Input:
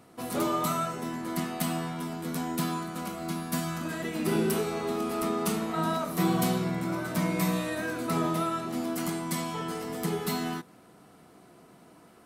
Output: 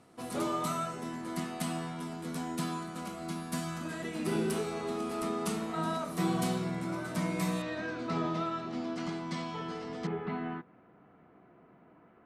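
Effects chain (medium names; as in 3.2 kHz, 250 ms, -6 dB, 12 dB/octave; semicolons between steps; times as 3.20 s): low-pass 11 kHz 24 dB/octave, from 7.62 s 5.5 kHz, from 10.07 s 2.3 kHz; trim -4.5 dB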